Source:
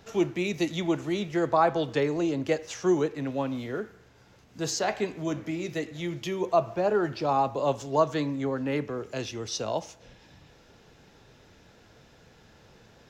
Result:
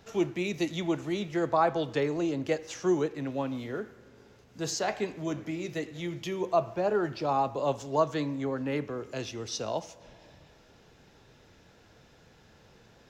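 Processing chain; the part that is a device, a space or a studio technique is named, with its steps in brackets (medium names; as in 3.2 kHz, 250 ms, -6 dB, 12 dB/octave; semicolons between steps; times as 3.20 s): compressed reverb return (on a send at -13.5 dB: reverberation RT60 1.8 s, pre-delay 71 ms + compression, threshold -35 dBFS, peak gain reduction 18 dB); on the sum: trim -2.5 dB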